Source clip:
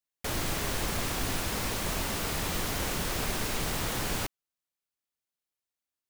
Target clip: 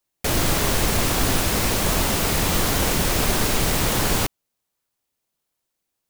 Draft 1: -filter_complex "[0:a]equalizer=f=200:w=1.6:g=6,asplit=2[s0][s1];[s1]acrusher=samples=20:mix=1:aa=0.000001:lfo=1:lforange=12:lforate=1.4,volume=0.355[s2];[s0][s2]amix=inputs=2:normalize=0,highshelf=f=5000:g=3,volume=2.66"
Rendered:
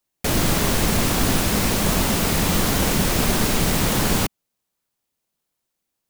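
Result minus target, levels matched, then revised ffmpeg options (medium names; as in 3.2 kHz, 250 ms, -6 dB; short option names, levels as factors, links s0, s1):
250 Hz band +3.0 dB
-filter_complex "[0:a]asplit=2[s0][s1];[s1]acrusher=samples=20:mix=1:aa=0.000001:lfo=1:lforange=12:lforate=1.4,volume=0.355[s2];[s0][s2]amix=inputs=2:normalize=0,highshelf=f=5000:g=3,volume=2.66"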